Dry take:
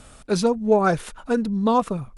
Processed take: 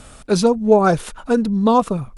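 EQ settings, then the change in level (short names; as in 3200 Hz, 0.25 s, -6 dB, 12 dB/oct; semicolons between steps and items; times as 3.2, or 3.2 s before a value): dynamic EQ 1900 Hz, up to -5 dB, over -37 dBFS, Q 1.6; +5.0 dB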